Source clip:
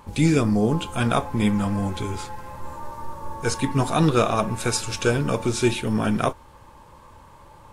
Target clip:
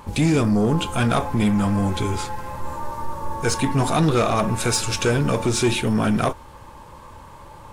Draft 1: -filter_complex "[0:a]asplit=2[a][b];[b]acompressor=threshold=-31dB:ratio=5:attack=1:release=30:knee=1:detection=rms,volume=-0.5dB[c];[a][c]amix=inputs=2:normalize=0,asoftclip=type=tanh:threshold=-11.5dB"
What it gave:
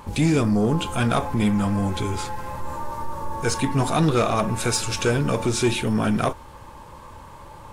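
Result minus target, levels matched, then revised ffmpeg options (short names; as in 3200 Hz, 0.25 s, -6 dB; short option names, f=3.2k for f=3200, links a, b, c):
compressor: peak gain reduction +7.5 dB
-filter_complex "[0:a]asplit=2[a][b];[b]acompressor=threshold=-21.5dB:ratio=5:attack=1:release=30:knee=1:detection=rms,volume=-0.5dB[c];[a][c]amix=inputs=2:normalize=0,asoftclip=type=tanh:threshold=-11.5dB"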